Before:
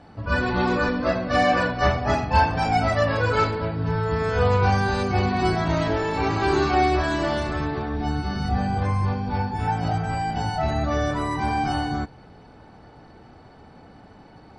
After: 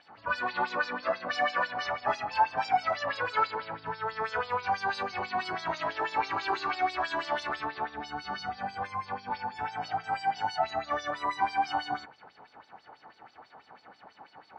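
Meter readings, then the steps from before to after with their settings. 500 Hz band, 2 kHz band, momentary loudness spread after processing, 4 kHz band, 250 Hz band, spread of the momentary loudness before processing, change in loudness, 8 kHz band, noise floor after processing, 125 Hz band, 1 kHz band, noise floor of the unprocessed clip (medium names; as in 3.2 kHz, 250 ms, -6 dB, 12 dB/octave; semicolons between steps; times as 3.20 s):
-11.5 dB, -5.5 dB, 8 LU, -5.5 dB, -19.5 dB, 7 LU, -8.5 dB, under -10 dB, -61 dBFS, -26.5 dB, -5.0 dB, -48 dBFS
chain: tone controls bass +1 dB, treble -4 dB; compression 2.5:1, threshold -25 dBFS, peak gain reduction 8.5 dB; LFO band-pass sine 6.1 Hz 840–5300 Hz; trim +6.5 dB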